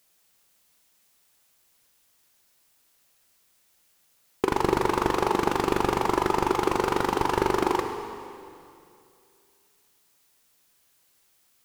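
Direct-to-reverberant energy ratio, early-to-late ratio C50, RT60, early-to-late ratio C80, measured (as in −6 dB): 5.0 dB, 6.5 dB, 2.5 s, 7.0 dB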